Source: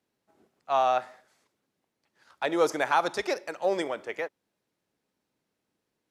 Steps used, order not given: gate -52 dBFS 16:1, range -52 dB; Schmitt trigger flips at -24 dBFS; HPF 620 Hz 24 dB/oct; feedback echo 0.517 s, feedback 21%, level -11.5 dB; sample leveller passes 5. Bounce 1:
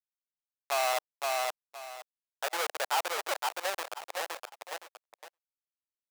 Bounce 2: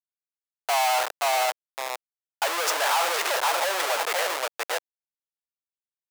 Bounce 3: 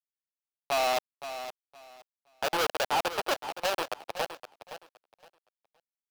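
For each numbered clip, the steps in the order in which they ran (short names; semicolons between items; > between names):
Schmitt trigger > feedback echo > sample leveller > gate > HPF; feedback echo > gate > sample leveller > Schmitt trigger > HPF; Schmitt trigger > HPF > sample leveller > gate > feedback echo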